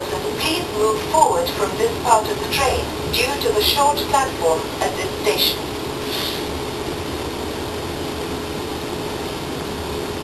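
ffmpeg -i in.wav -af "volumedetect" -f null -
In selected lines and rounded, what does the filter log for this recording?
mean_volume: -20.9 dB
max_volume: -2.6 dB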